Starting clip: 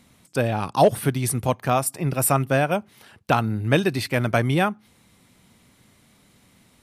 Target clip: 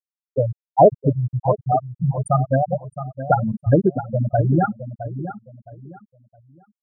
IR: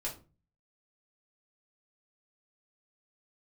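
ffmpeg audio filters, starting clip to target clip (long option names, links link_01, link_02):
-filter_complex "[0:a]bandreject=frequency=50:width_type=h:width=6,bandreject=frequency=100:width_type=h:width=6,bandreject=frequency=150:width_type=h:width=6,bandreject=frequency=200:width_type=h:width=6,bandreject=frequency=250:width_type=h:width=6,bandreject=frequency=300:width_type=h:width=6,bandreject=frequency=350:width_type=h:width=6,bandreject=frequency=400:width_type=h:width=6,bandreject=frequency=450:width_type=h:width=6,adynamicequalizer=threshold=0.0158:dfrequency=570:dqfactor=2.3:tfrequency=570:tqfactor=2.3:attack=5:release=100:ratio=0.375:range=2:mode=cutabove:tftype=bell,acontrast=25,afftfilt=real='re*gte(hypot(re,im),0.891)':imag='im*gte(hypot(re,im),0.891)':win_size=1024:overlap=0.75,asplit=2[link_01][link_02];[link_02]adelay=665,lowpass=frequency=1900:poles=1,volume=-11.5dB,asplit=2[link_03][link_04];[link_04]adelay=665,lowpass=frequency=1900:poles=1,volume=0.28,asplit=2[link_05][link_06];[link_06]adelay=665,lowpass=frequency=1900:poles=1,volume=0.28[link_07];[link_03][link_05][link_07]amix=inputs=3:normalize=0[link_08];[link_01][link_08]amix=inputs=2:normalize=0,volume=2dB"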